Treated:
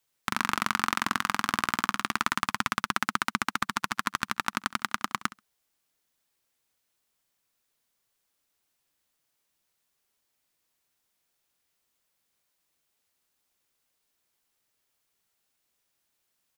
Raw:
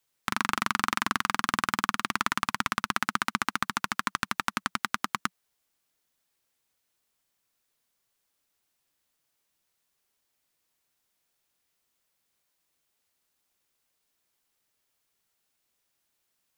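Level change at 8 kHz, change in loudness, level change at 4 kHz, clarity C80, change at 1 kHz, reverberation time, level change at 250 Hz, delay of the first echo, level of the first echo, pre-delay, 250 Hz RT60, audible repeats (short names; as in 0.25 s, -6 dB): 0.0 dB, 0.0 dB, 0.0 dB, none, 0.0 dB, none, 0.0 dB, 67 ms, -19.0 dB, none, none, 1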